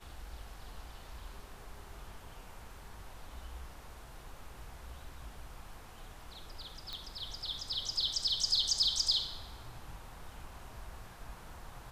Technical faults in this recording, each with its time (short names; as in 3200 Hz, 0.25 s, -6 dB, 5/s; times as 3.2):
6.93 pop -26 dBFS